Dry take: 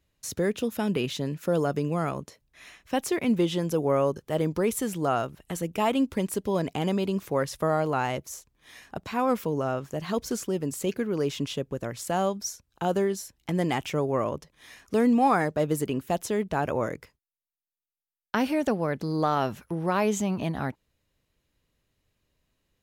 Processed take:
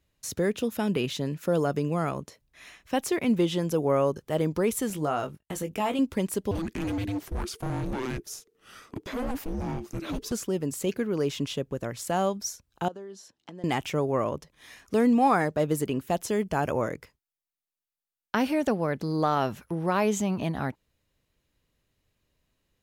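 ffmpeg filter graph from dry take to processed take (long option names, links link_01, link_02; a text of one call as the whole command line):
ffmpeg -i in.wav -filter_complex "[0:a]asettb=1/sr,asplit=3[link_01][link_02][link_03];[link_01]atrim=end=4.904[link_04];[link_02]atrim=start=4.9:end=5.99,asetpts=PTS-STARTPTS,afade=type=in:duration=0.004:curve=qsin,afade=type=out:start_time=1.086:duration=0.004:curve=qsin,agate=range=-30dB:threshold=-47dB:ratio=16:release=100:detection=peak,acompressor=threshold=-29dB:ratio=1.5:attack=3.2:release=140:knee=1:detection=peak,asplit=2[link_05][link_06];[link_06]adelay=20,volume=-7dB[link_07];[link_05][link_07]amix=inputs=2:normalize=0,atrim=end_sample=48069[link_08];[link_03]atrim=start=5.986[link_09];[link_04][link_08]acrossfade=duration=0.004:curve1=hsin:curve2=qsin[link_10];[link_10][link_09]acrossfade=duration=0.004:curve1=qsin:curve2=hsin,asettb=1/sr,asplit=3[link_11][link_12][link_13];[link_11]atrim=end=6.514[link_14];[link_12]atrim=start=6.51:end=10.32,asetpts=PTS-STARTPTS,afade=type=in:duration=0.004:curve=qsin,afade=type=out:start_time=3.806:duration=0.004:curve=qsin,afreqshift=-490,volume=27dB,asoftclip=hard,volume=-27dB[link_15];[link_13]atrim=start=10.316[link_16];[link_14][link_15]acrossfade=duration=0.004:curve1=hsin:curve2=qsin[link_17];[link_17][link_16]acrossfade=duration=0.004:curve1=qsin:curve2=hsin,asettb=1/sr,asplit=3[link_18][link_19][link_20];[link_18]atrim=end=12.884[link_21];[link_19]atrim=start=12.88:end=13.64,asetpts=PTS-STARTPTS,afade=type=in:duration=0.004:curve=qsin,afade=type=out:start_time=0.756:duration=0.004:curve=qsin,acompressor=threshold=-37dB:ratio=8:attack=3.2:release=140:knee=1:detection=peak,highpass=220,lowpass=5100,equalizer=frequency=2200:width_type=o:width=0.51:gain=-8.5[link_22];[link_20]atrim=start=13.636[link_23];[link_21][link_22]acrossfade=duration=0.004:curve1=hsin:curve2=qsin[link_24];[link_24][link_23]acrossfade=duration=0.004:curve1=qsin:curve2=hsin,asettb=1/sr,asplit=3[link_25][link_26][link_27];[link_25]atrim=end=16.284[link_28];[link_26]atrim=start=16.28:end=16.82,asetpts=PTS-STARTPTS,afade=type=in:duration=0.004:curve=qsin,afade=type=out:start_time=0.536:duration=0.004:curve=qsin,asuperstop=centerf=3800:order=20:qfactor=7.6,bass=frequency=250:gain=1,treble=frequency=4000:gain=5[link_29];[link_27]atrim=start=16.816[link_30];[link_28][link_29]acrossfade=duration=0.004:curve1=hsin:curve2=qsin[link_31];[link_31][link_30]acrossfade=duration=0.004:curve1=qsin:curve2=hsin" out.wav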